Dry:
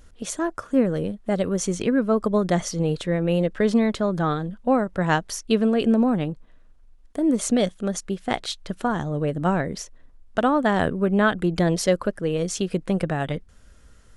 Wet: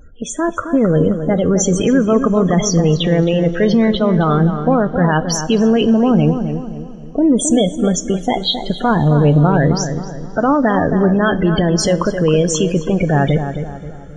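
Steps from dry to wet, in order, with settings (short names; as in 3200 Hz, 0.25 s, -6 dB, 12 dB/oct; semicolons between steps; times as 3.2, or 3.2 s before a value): dynamic EQ 3200 Hz, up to +4 dB, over -49 dBFS, Q 3.7; loudest bins only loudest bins 32; limiter -20.5 dBFS, peak gain reduction 11.5 dB; AGC gain up to 6 dB; darkening echo 0.266 s, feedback 43%, low-pass 1700 Hz, level -8 dB; two-slope reverb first 0.27 s, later 4.4 s, from -19 dB, DRR 13 dB; gain +8 dB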